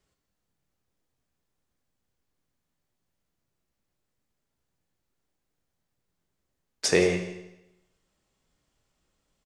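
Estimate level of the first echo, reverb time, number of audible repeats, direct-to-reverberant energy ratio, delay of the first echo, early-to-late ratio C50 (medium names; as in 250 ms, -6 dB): -14.5 dB, 0.90 s, 1, 4.5 dB, 168 ms, 7.5 dB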